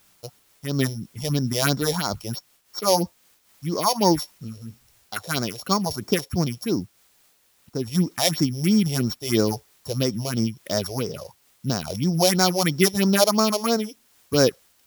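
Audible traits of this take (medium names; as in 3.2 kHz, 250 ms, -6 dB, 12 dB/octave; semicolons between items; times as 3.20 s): a buzz of ramps at a fixed pitch in blocks of 8 samples; phasing stages 4, 3 Hz, lowest notch 220–3000 Hz; a quantiser's noise floor 10-bit, dither triangular; random flutter of the level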